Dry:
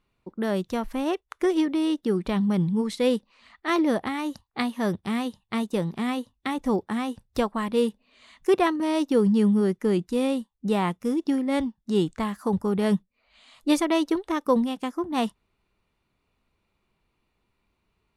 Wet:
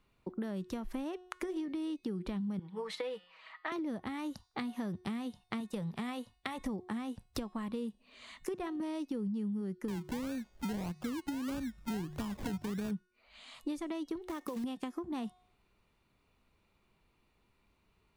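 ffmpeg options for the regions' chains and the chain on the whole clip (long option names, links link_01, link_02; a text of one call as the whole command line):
ffmpeg -i in.wav -filter_complex "[0:a]asettb=1/sr,asplit=3[link_01][link_02][link_03];[link_01]atrim=end=2.594[link_04];[link_02]atrim=start=2.59:end=3.72,asetpts=PTS-STARTPTS,afade=type=in:duration=0.004:curve=qsin,afade=type=out:start_time=1.126:duration=0.004:curve=qsin,acrossover=split=490 3400:gain=0.0794 1 0.178[link_05][link_06][link_07];[link_05][link_06][link_07]amix=inputs=3:normalize=0,aecho=1:1:6.3:0.66,atrim=end_sample=49833,bandreject=frequency=177.7:width_type=h:width=4,bandreject=frequency=355.4:width_type=h:width=4,bandreject=frequency=533.1:width_type=h:width=4,bandreject=frequency=710.8:width_type=h:width=4,bandreject=frequency=888.5:width_type=h:width=4,bandreject=frequency=1066.2:width_type=h:width=4,bandreject=frequency=1243.9:width_type=h:width=4,bandreject=frequency=1421.6:width_type=h:width=4,bandreject=frequency=1599.3:width_type=h:width=4,bandreject=frequency=1777:width_type=h:width=4,bandreject=frequency=1954.7:width_type=h:width=4,bandreject=frequency=2132.4:width_type=h:width=4,bandreject=frequency=2310.1:width_type=h:width=4,bandreject=frequency=2487.8:width_type=h:width=4,bandreject=frequency=2665.5:width_type=h:width=4,bandreject=frequency=2843.2:width_type=h:width=4,bandreject=frequency=3020.9:width_type=h:width=4,bandreject=frequency=3198.6:width_type=h:width=4,bandreject=frequency=3376.3:width_type=h:width=4,bandreject=frequency=3554:width_type=h:width=4,bandreject=frequency=3731.7:width_type=h:width=4,bandreject=frequency=3909.4:width_type=h:width=4,bandreject=frequency=4087.1:width_type=h:width=4,bandreject=frequency=4264.8:width_type=h:width=4,bandreject=frequency=4442.5:width_type=h:width=4,bandreject=frequency=4620.2:width_type=h:width=4,bandreject=frequency=4797.9:width_type=h:width=4,bandreject=frequency=4975.6:width_type=h:width=4,bandreject=frequency=5153.3:width_type=h:width=4,bandreject=frequency=5331:width_type=h:width=4[link_08];[link_03]atrim=start=3.716[link_09];[link_04][link_08]acrossfade=duration=0.004:curve1=hsin:curve2=qsin[link_10];[link_10][link_09]acrossfade=duration=0.004:curve1=qsin:curve2=hsin,asettb=1/sr,asplit=3[link_11][link_12][link_13];[link_11]atrim=end=5.604[link_14];[link_12]atrim=start=5.6:end=6.59,asetpts=PTS-STARTPTS,afade=type=in:duration=0.004:curve=qsin,afade=type=out:start_time=0.986:duration=0.004:curve=qsin,equalizer=frequency=310:width=3.2:gain=-13.5,bandreject=frequency=6200:width=21[link_15];[link_13]atrim=start=6.586[link_16];[link_14][link_15]acrossfade=duration=0.004:curve1=hsin:curve2=qsin[link_17];[link_17][link_16]acrossfade=duration=0.004:curve1=qsin:curve2=hsin,asettb=1/sr,asplit=3[link_18][link_19][link_20];[link_18]atrim=end=9.884[link_21];[link_19]atrim=start=9.88:end=12.91,asetpts=PTS-STARTPTS,afade=type=in:duration=0.004:curve=qsin,afade=type=out:start_time=3.026:duration=0.004:curve=qsin,bandreject=frequency=50:width_type=h:width=6,bandreject=frequency=100:width_type=h:width=6,bandreject=frequency=150:width_type=h:width=6,acompressor=mode=upward:threshold=-25dB:ratio=2.5:attack=3.2:release=140:knee=2.83:detection=peak,acrusher=samples=30:mix=1:aa=0.000001:lfo=1:lforange=18:lforate=1.6[link_22];[link_20]atrim=start=12.906[link_23];[link_21][link_22]acrossfade=duration=0.004:curve1=hsin:curve2=qsin[link_24];[link_24][link_23]acrossfade=duration=0.004:curve1=qsin:curve2=hsin,asettb=1/sr,asplit=3[link_25][link_26][link_27];[link_25]atrim=end=14.224[link_28];[link_26]atrim=start=14.22:end=14.64,asetpts=PTS-STARTPTS,afade=type=in:duration=0.004:curve=qsin,afade=type=out:start_time=0.416:duration=0.004:curve=qsin,acompressor=threshold=-31dB:ratio=8:attack=3.2:release=140:knee=1:detection=peak,acrusher=bits=4:mode=log:mix=0:aa=0.000001[link_29];[link_27]atrim=start=14.636[link_30];[link_28][link_29]acrossfade=duration=0.004:curve1=hsin:curve2=qsin[link_31];[link_31][link_30]acrossfade=duration=0.004:curve1=qsin:curve2=hsin,acrossover=split=230[link_32][link_33];[link_33]acompressor=threshold=-33dB:ratio=6[link_34];[link_32][link_34]amix=inputs=2:normalize=0,bandreject=frequency=363.9:width_type=h:width=4,bandreject=frequency=727.8:width_type=h:width=4,bandreject=frequency=1091.7:width_type=h:width=4,bandreject=frequency=1455.6:width_type=h:width=4,bandreject=frequency=1819.5:width_type=h:width=4,bandreject=frequency=2183.4:width_type=h:width=4,bandreject=frequency=2547.3:width_type=h:width=4,bandreject=frequency=2911.2:width_type=h:width=4,bandreject=frequency=3275.1:width_type=h:width=4,bandreject=frequency=3639:width_type=h:width=4,bandreject=frequency=4002.9:width_type=h:width=4,bandreject=frequency=4366.8:width_type=h:width=4,bandreject=frequency=4730.7:width_type=h:width=4,bandreject=frequency=5094.6:width_type=h:width=4,bandreject=frequency=5458.5:width_type=h:width=4,bandreject=frequency=5822.4:width_type=h:width=4,bandreject=frequency=6186.3:width_type=h:width=4,bandreject=frequency=6550.2:width_type=h:width=4,bandreject=frequency=6914.1:width_type=h:width=4,bandreject=frequency=7278:width_type=h:width=4,bandreject=frequency=7641.9:width_type=h:width=4,bandreject=frequency=8005.8:width_type=h:width=4,bandreject=frequency=8369.7:width_type=h:width=4,bandreject=frequency=8733.6:width_type=h:width=4,bandreject=frequency=9097.5:width_type=h:width=4,bandreject=frequency=9461.4:width_type=h:width=4,acompressor=threshold=-36dB:ratio=6,volume=1dB" out.wav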